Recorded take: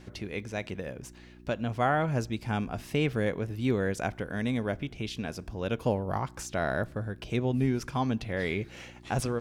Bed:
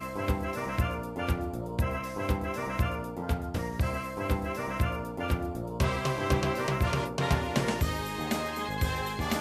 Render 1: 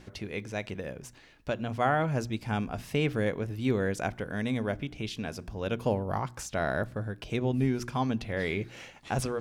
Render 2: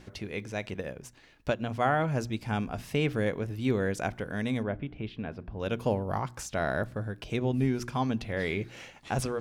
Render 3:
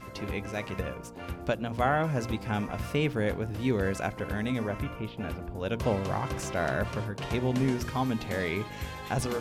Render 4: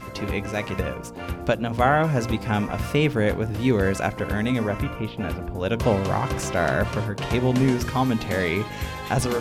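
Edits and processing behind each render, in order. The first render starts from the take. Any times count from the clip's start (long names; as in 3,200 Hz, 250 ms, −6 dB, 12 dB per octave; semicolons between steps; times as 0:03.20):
hum removal 60 Hz, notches 6
0:00.72–0:01.75: transient designer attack +4 dB, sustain −4 dB; 0:04.63–0:05.60: high-frequency loss of the air 420 metres
mix in bed −8.5 dB
level +7 dB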